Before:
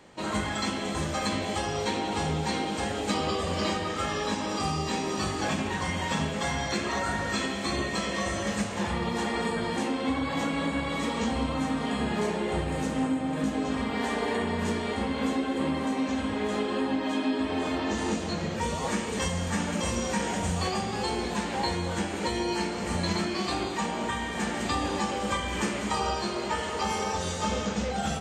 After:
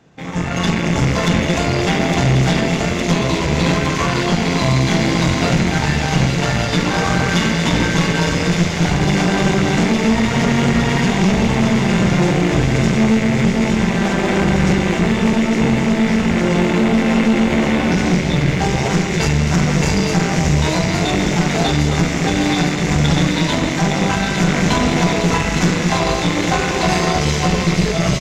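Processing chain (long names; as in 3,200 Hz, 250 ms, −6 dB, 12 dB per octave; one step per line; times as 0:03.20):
loose part that buzzes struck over −41 dBFS, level −25 dBFS
parametric band 170 Hz +9 dB 1.5 octaves
automatic gain control gain up to 16 dB
tube saturation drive 12 dB, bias 0.75
pitch shifter −3 semitones
delay with a high-pass on its return 860 ms, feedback 84%, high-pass 3,400 Hz, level −4 dB
level +3 dB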